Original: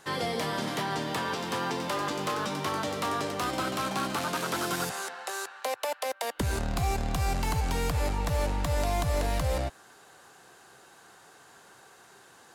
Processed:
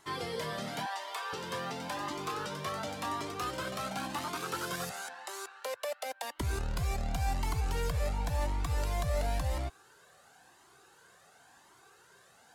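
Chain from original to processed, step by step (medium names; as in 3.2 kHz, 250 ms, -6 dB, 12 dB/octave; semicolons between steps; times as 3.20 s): 0.86–1.33 s: steep high-pass 510 Hz 36 dB/octave; Shepard-style flanger rising 0.94 Hz; trim -1.5 dB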